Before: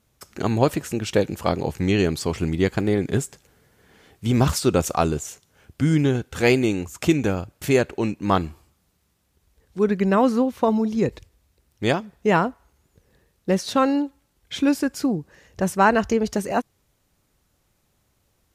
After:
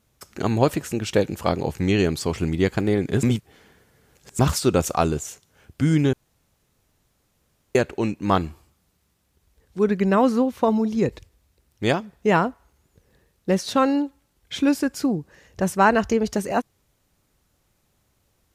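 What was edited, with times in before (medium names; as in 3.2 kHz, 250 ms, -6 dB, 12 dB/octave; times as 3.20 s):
3.23–4.39 s: reverse
6.13–7.75 s: room tone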